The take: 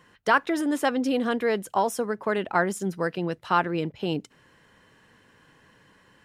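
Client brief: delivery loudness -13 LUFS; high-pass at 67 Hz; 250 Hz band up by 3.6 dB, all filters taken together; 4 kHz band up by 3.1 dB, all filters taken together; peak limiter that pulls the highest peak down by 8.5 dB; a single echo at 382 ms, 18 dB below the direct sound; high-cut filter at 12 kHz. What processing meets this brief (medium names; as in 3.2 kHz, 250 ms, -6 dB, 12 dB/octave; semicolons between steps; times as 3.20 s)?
high-pass 67 Hz; low-pass 12 kHz; peaking EQ 250 Hz +4.5 dB; peaking EQ 4 kHz +4.5 dB; peak limiter -15.5 dBFS; delay 382 ms -18 dB; trim +13.5 dB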